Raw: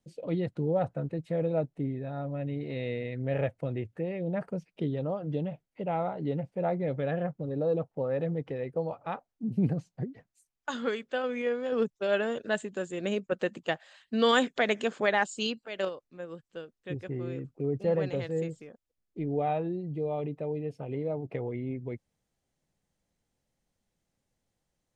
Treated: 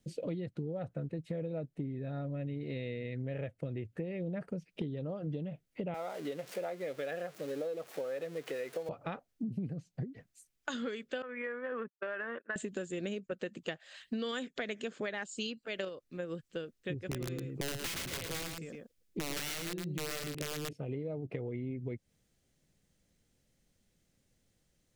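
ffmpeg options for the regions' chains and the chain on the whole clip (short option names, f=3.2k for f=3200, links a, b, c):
-filter_complex "[0:a]asettb=1/sr,asplit=3[a][b][c];[a]atrim=end=5.944[d];[b]atrim=start=5.94:end=8.89,asetpts=PTS-STARTPTS,afade=t=in:d=0.004:c=qsin,afade=t=out:st=2.946:d=0.004:c=qsin,aeval=exprs='val(0)+0.5*0.00596*sgn(val(0))':c=same,highpass=550[e];[c]atrim=start=8.886[f];[d][e]acrossfade=d=0.004:c1=hsin:c2=qsin[g];[g][f]acrossfade=d=0.004:c1=qsin:c2=hsin,asettb=1/sr,asplit=3[h][i][j];[h]atrim=end=11.224[k];[i]atrim=start=11.22:end=12.56,asetpts=PTS-STARTPTS,afade=t=in:d=0.004:c=qsin,afade=t=out:st=1.336:d=0.004:c=qsin,agate=range=-33dB:threshold=-31dB:ratio=3:release=100:detection=peak,highpass=440,equalizer=f=440:t=q:w=4:g=-8,equalizer=f=670:t=q:w=4:g=-6,equalizer=f=1.1k:t=q:w=4:g=7,equalizer=f=1.8k:t=q:w=4:g=6,lowpass=f=2k:w=0.5412,lowpass=f=2k:w=1.3066,acompressor=threshold=-36dB:ratio=3:attack=3.2:release=140:knee=1:detection=peak[l];[j]atrim=start=12.556[m];[k][l]acrossfade=d=0.004:c1=hsin:c2=qsin[n];[n][m]acrossfade=d=0.004:c1=qsin:c2=hsin,asettb=1/sr,asplit=3[o][p][q];[o]atrim=end=16.994[r];[p]atrim=start=16.99:end=20.73,asetpts=PTS-STARTPTS,afade=t=in:d=0.004:c=qsin,afade=t=out:st=3.736:d=0.004:c=qsin,aeval=exprs='(mod(20*val(0)+1,2)-1)/20':c=same,aecho=1:1:111:0.473,atrim=end_sample=164934,adynamicequalizer=threshold=0.00447:dfrequency=2400:dqfactor=0.7:tfrequency=2400:tqfactor=0.7:attack=5:release=100:ratio=0.375:range=2.5:mode=boostabove:tftype=highshelf[s];[q]atrim=start=20.726[t];[r][s]acrossfade=d=0.004:c1=hsin:c2=qsin[u];[u][t]acrossfade=d=0.004:c1=qsin:c2=hsin,equalizer=f=880:t=o:w=0.97:g=-9.5,acompressor=threshold=-42dB:ratio=12,volume=7.5dB"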